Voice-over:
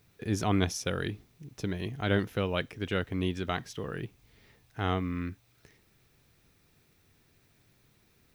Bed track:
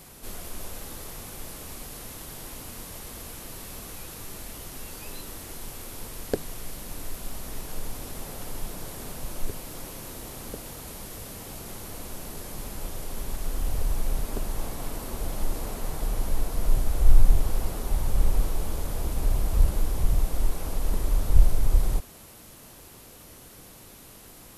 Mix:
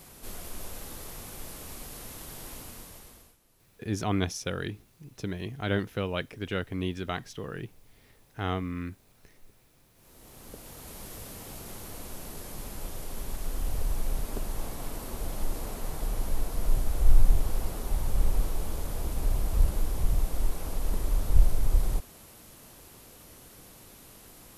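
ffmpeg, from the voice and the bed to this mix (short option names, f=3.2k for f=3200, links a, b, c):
-filter_complex "[0:a]adelay=3600,volume=-1dB[a];[1:a]volume=20.5dB,afade=t=out:st=2.55:d=0.82:silence=0.0668344,afade=t=in:st=9.94:d=1.14:silence=0.0707946[b];[a][b]amix=inputs=2:normalize=0"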